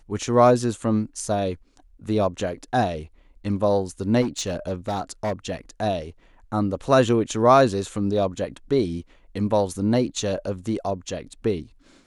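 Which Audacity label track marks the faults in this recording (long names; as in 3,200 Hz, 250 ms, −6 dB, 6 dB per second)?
4.210000	5.560000	clipping −21 dBFS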